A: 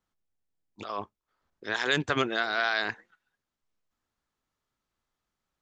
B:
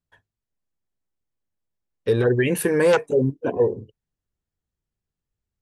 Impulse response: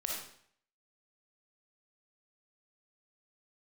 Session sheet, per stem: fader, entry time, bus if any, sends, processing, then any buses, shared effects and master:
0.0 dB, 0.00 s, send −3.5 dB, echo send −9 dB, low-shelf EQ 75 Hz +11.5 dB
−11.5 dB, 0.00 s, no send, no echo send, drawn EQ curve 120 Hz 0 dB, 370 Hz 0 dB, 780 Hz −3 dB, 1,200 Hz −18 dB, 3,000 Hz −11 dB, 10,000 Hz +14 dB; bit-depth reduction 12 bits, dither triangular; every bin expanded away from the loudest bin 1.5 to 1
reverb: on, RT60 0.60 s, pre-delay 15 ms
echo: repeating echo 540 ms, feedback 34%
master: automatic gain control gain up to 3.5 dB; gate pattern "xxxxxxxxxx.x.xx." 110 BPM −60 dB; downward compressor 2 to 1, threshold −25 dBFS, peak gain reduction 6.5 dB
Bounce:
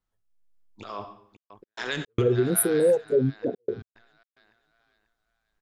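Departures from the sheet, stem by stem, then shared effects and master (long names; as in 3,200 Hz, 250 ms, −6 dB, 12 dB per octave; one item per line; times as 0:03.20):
stem A 0.0 dB → −9.5 dB
stem B −11.5 dB → −0.5 dB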